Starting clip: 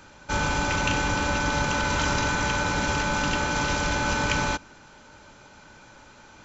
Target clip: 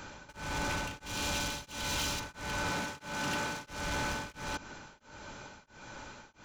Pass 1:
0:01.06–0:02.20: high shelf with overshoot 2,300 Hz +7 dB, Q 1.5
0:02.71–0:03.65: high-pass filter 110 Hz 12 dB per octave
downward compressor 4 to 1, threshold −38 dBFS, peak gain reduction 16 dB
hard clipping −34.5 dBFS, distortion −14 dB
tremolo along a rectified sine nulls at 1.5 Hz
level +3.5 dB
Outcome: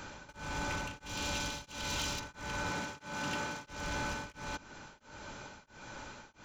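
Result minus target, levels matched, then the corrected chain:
downward compressor: peak gain reduction +6 dB
0:01.06–0:02.20: high shelf with overshoot 2,300 Hz +7 dB, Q 1.5
0:02.71–0:03.65: high-pass filter 110 Hz 12 dB per octave
downward compressor 4 to 1, threshold −30 dBFS, peak gain reduction 10 dB
hard clipping −34.5 dBFS, distortion −8 dB
tremolo along a rectified sine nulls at 1.5 Hz
level +3.5 dB

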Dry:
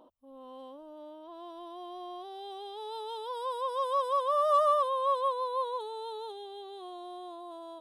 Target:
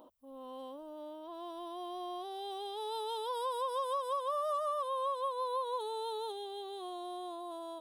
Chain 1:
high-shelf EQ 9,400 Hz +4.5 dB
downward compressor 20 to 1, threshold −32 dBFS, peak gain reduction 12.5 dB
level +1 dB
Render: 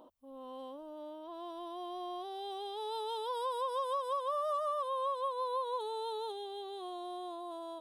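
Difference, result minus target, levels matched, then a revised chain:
8,000 Hz band −3.5 dB
high-shelf EQ 9,400 Hz +12 dB
downward compressor 20 to 1, threshold −32 dBFS, peak gain reduction 12.5 dB
level +1 dB

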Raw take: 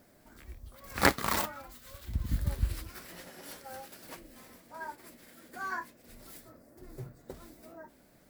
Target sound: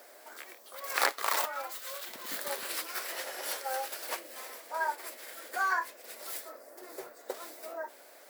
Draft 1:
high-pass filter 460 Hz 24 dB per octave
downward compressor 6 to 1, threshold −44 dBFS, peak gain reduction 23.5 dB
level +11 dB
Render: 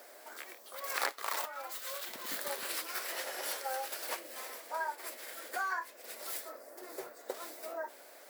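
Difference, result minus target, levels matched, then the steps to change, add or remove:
downward compressor: peak gain reduction +6.5 dB
change: downward compressor 6 to 1, threshold −36.5 dBFS, peak gain reduction 17.5 dB

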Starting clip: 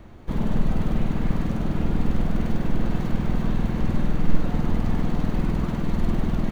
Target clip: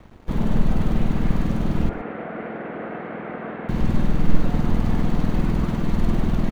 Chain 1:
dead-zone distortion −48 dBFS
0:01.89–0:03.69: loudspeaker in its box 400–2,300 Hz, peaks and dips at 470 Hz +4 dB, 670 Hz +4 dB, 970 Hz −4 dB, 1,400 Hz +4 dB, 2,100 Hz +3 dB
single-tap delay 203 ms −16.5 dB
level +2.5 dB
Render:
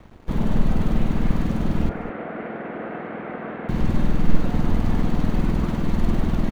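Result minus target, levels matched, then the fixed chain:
echo 81 ms late
dead-zone distortion −48 dBFS
0:01.89–0:03.69: loudspeaker in its box 400–2,300 Hz, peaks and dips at 470 Hz +4 dB, 670 Hz +4 dB, 970 Hz −4 dB, 1,400 Hz +4 dB, 2,100 Hz +3 dB
single-tap delay 122 ms −16.5 dB
level +2.5 dB

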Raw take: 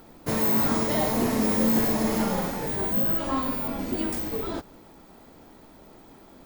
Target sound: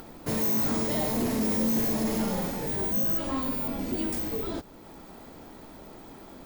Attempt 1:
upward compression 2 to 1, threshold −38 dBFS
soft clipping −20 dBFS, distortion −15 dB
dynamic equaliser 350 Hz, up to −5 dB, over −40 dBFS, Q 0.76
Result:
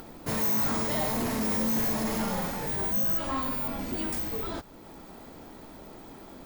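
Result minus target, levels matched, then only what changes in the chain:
1,000 Hz band +3.0 dB
change: dynamic equaliser 1,200 Hz, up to −5 dB, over −40 dBFS, Q 0.76

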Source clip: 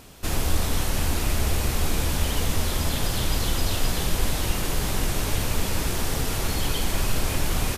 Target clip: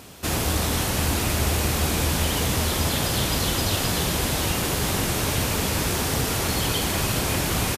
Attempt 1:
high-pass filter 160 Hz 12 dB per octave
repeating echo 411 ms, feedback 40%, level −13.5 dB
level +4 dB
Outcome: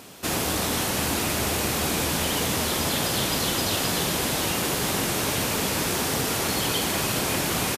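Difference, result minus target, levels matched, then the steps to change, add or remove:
125 Hz band −5.5 dB
change: high-pass filter 76 Hz 12 dB per octave

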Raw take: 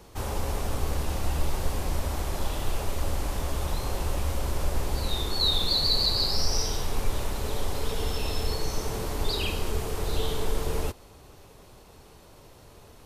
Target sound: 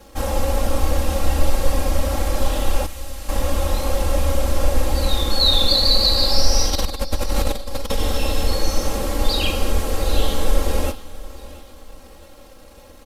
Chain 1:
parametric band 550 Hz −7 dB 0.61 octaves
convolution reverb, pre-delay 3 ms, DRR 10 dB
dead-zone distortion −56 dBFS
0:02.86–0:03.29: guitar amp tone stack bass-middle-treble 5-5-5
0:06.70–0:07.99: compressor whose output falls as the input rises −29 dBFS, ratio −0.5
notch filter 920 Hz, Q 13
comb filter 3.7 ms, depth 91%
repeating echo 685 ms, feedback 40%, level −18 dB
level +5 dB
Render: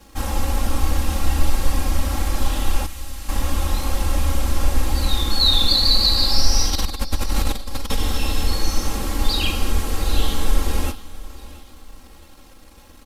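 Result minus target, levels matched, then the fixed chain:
500 Hz band −8.0 dB
parametric band 550 Hz +3.5 dB 0.61 octaves
convolution reverb, pre-delay 3 ms, DRR 10 dB
dead-zone distortion −56 dBFS
0:02.86–0:03.29: guitar amp tone stack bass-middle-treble 5-5-5
0:06.70–0:07.99: compressor whose output falls as the input rises −29 dBFS, ratio −0.5
notch filter 920 Hz, Q 13
comb filter 3.7 ms, depth 91%
repeating echo 685 ms, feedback 40%, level −18 dB
level +5 dB

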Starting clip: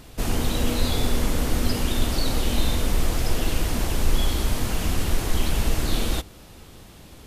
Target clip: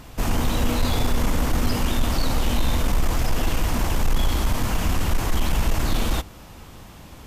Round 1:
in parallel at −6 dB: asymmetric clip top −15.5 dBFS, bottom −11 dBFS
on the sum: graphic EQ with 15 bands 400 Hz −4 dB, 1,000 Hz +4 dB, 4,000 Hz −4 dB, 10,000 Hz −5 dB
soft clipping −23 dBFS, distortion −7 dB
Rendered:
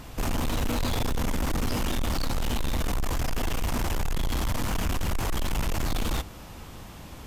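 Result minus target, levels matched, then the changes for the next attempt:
soft clipping: distortion +11 dB
change: soft clipping −11.5 dBFS, distortion −18 dB

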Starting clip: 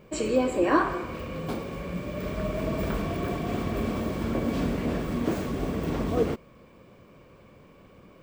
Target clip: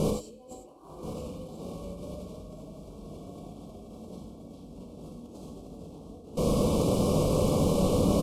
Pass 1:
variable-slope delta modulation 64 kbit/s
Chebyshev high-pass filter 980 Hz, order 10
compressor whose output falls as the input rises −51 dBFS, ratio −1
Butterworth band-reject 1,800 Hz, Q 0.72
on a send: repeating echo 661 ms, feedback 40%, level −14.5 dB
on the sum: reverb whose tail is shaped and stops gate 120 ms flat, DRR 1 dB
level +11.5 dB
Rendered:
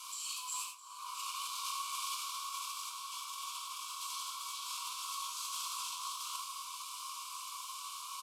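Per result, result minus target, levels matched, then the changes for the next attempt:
1,000 Hz band +11.0 dB; echo 368 ms early
remove: Chebyshev high-pass filter 980 Hz, order 10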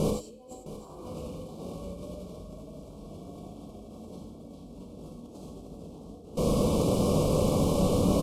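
echo 368 ms early
change: repeating echo 1,029 ms, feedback 40%, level −14.5 dB

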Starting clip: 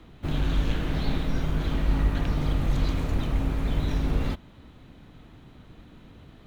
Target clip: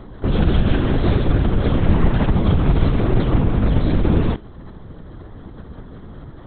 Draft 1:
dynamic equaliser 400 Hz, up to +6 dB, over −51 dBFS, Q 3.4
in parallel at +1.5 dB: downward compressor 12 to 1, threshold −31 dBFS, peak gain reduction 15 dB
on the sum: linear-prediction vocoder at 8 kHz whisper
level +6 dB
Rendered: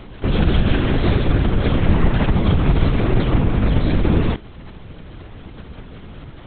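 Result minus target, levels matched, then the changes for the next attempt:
2,000 Hz band +3.5 dB
add after downward compressor: low-pass filter 2,600 Hz 24 dB per octave

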